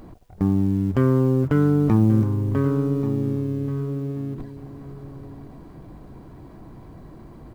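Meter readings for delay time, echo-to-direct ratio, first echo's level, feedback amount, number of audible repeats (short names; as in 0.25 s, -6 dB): 1.133 s, -13.5 dB, -13.5 dB, 24%, 2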